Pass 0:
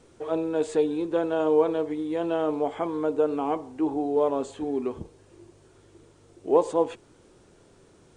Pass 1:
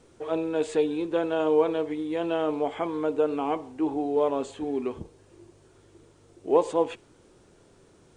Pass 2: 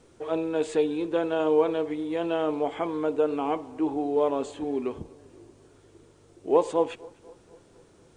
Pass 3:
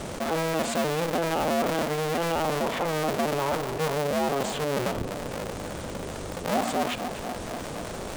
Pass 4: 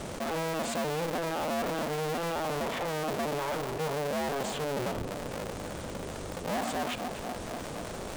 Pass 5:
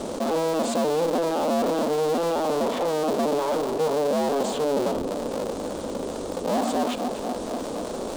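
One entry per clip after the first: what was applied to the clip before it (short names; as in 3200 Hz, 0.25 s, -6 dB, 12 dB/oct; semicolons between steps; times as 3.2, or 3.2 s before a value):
dynamic EQ 2600 Hz, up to +6 dB, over -50 dBFS, Q 1.2; gain -1 dB
darkening echo 0.246 s, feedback 60%, level -23 dB
cycle switcher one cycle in 2, inverted; fast leveller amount 70%; gain -6.5 dB
overloaded stage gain 24.5 dB; gain -3.5 dB
graphic EQ 125/250/500/1000/2000/4000/8000 Hz -8/+11/+8/+5/-5/+5/+4 dB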